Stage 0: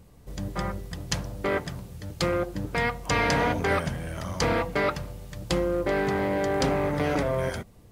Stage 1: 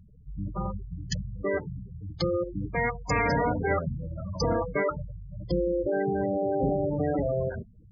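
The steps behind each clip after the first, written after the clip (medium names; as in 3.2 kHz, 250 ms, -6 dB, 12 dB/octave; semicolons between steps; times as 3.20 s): spectral gate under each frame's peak -10 dB strong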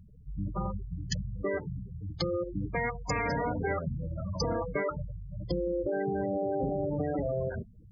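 compression, threshold -27 dBFS, peak gain reduction 6 dB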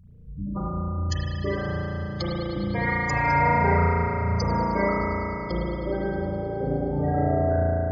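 reverberation RT60 3.8 s, pre-delay 35 ms, DRR -9 dB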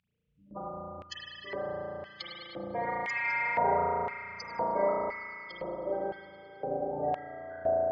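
LFO band-pass square 0.98 Hz 690–2700 Hz; trim +1.5 dB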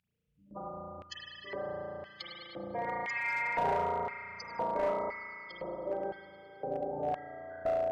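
one-sided clip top -24.5 dBFS; trim -2.5 dB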